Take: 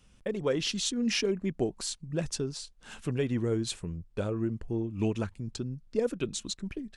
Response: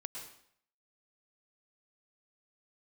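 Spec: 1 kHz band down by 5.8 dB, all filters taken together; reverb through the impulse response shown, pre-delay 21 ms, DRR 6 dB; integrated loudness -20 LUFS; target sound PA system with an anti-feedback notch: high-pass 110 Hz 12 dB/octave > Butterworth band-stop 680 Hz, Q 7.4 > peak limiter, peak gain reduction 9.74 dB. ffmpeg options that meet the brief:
-filter_complex "[0:a]equalizer=f=1000:t=o:g=-7,asplit=2[s0][s1];[1:a]atrim=start_sample=2205,adelay=21[s2];[s1][s2]afir=irnorm=-1:irlink=0,volume=0.631[s3];[s0][s3]amix=inputs=2:normalize=0,highpass=110,asuperstop=centerf=680:order=8:qfactor=7.4,volume=5.31,alimiter=limit=0.335:level=0:latency=1"

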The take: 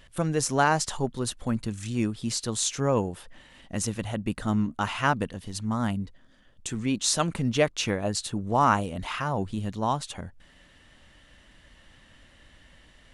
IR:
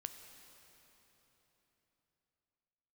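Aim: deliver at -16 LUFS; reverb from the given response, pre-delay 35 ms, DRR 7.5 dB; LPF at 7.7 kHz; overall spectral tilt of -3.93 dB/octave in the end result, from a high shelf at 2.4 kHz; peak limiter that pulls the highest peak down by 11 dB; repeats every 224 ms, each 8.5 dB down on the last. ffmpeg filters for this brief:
-filter_complex "[0:a]lowpass=7700,highshelf=f=2400:g=6,alimiter=limit=0.133:level=0:latency=1,aecho=1:1:224|448|672|896:0.376|0.143|0.0543|0.0206,asplit=2[s0][s1];[1:a]atrim=start_sample=2205,adelay=35[s2];[s1][s2]afir=irnorm=-1:irlink=0,volume=0.631[s3];[s0][s3]amix=inputs=2:normalize=0,volume=4.22"

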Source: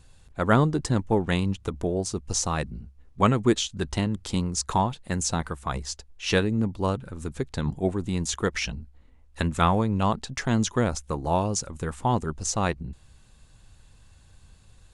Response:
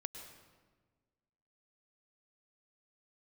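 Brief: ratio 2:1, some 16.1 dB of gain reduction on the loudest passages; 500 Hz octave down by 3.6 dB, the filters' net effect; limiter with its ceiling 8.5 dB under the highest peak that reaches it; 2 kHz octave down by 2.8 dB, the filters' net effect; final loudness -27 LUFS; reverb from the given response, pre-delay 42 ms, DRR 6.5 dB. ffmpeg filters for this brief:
-filter_complex "[0:a]equalizer=f=500:t=o:g=-4.5,equalizer=f=2000:t=o:g=-3.5,acompressor=threshold=0.00447:ratio=2,alimiter=level_in=2.66:limit=0.0631:level=0:latency=1,volume=0.376,asplit=2[s0][s1];[1:a]atrim=start_sample=2205,adelay=42[s2];[s1][s2]afir=irnorm=-1:irlink=0,volume=0.631[s3];[s0][s3]amix=inputs=2:normalize=0,volume=6.31"

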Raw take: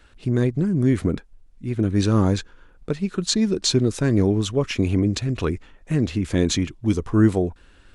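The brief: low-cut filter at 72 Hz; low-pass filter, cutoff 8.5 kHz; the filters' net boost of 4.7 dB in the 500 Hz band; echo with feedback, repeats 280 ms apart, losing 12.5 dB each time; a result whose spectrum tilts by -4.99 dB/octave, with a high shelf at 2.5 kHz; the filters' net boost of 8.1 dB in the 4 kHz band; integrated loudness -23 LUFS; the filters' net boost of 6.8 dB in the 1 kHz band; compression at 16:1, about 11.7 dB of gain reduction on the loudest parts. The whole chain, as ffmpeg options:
-af "highpass=72,lowpass=8500,equalizer=f=500:t=o:g=5,equalizer=f=1000:t=o:g=6,highshelf=f=2500:g=5.5,equalizer=f=4000:t=o:g=4.5,acompressor=threshold=0.0794:ratio=16,aecho=1:1:280|560|840:0.237|0.0569|0.0137,volume=1.78"

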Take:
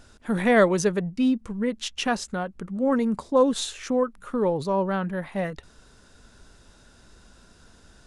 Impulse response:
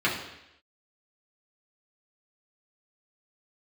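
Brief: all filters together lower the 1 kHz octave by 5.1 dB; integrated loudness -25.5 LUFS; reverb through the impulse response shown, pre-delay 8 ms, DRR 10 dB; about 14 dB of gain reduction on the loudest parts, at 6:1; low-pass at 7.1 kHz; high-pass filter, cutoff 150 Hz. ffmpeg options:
-filter_complex "[0:a]highpass=150,lowpass=7100,equalizer=f=1000:t=o:g=-7,acompressor=threshold=0.0251:ratio=6,asplit=2[s0][s1];[1:a]atrim=start_sample=2205,adelay=8[s2];[s1][s2]afir=irnorm=-1:irlink=0,volume=0.0631[s3];[s0][s3]amix=inputs=2:normalize=0,volume=3.35"

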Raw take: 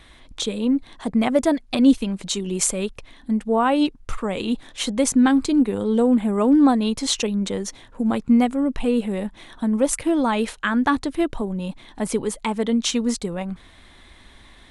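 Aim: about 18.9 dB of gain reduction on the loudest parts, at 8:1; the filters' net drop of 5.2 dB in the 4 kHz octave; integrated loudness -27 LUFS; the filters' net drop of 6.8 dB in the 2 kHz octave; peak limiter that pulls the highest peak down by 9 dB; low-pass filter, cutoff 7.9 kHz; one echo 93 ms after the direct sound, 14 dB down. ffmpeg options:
-af "lowpass=7900,equalizer=f=2000:t=o:g=-8.5,equalizer=f=4000:t=o:g=-3.5,acompressor=threshold=0.0251:ratio=8,alimiter=level_in=1.68:limit=0.0631:level=0:latency=1,volume=0.596,aecho=1:1:93:0.2,volume=3.35"

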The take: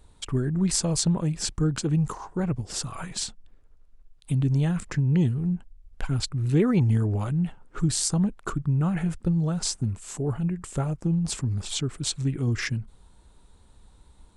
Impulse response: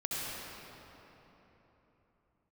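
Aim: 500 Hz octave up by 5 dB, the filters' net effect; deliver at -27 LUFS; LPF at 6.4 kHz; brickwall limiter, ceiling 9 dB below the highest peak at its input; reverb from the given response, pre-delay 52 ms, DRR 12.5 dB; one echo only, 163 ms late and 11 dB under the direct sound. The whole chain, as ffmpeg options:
-filter_complex "[0:a]lowpass=6400,equalizer=f=500:t=o:g=6.5,alimiter=limit=0.119:level=0:latency=1,aecho=1:1:163:0.282,asplit=2[s0][s1];[1:a]atrim=start_sample=2205,adelay=52[s2];[s1][s2]afir=irnorm=-1:irlink=0,volume=0.126[s3];[s0][s3]amix=inputs=2:normalize=0,volume=1.06"

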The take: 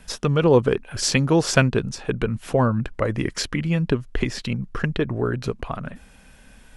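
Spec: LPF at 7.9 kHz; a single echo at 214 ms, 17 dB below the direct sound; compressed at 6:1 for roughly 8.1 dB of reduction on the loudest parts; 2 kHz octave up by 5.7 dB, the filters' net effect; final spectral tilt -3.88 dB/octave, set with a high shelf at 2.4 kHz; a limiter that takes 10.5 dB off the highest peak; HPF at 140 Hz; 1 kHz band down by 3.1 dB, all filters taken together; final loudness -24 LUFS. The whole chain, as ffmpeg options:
-af "highpass=140,lowpass=7900,equalizer=f=1000:t=o:g=-8,equalizer=f=2000:t=o:g=6.5,highshelf=f=2400:g=7.5,acompressor=threshold=0.112:ratio=6,alimiter=limit=0.211:level=0:latency=1,aecho=1:1:214:0.141,volume=1.33"

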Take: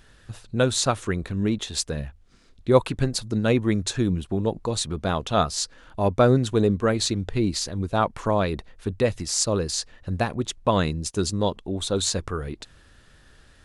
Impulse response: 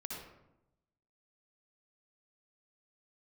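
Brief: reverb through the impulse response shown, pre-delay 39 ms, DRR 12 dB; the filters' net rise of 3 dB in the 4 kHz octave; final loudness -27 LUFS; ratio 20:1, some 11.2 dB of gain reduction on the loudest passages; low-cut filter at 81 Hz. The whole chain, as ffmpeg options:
-filter_complex "[0:a]highpass=81,equalizer=f=4000:t=o:g=3.5,acompressor=threshold=0.0794:ratio=20,asplit=2[s0][s1];[1:a]atrim=start_sample=2205,adelay=39[s2];[s1][s2]afir=irnorm=-1:irlink=0,volume=0.282[s3];[s0][s3]amix=inputs=2:normalize=0,volume=1.12"

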